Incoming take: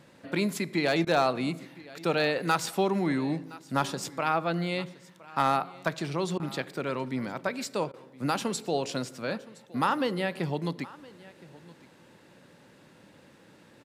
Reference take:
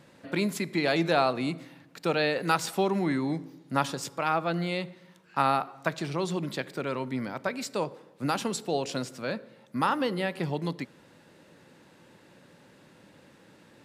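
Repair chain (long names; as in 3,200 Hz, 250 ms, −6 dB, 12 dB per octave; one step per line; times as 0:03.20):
clipped peaks rebuilt −14.5 dBFS
repair the gap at 0:01.05/0:06.38/0:07.92, 16 ms
echo removal 1,017 ms −21 dB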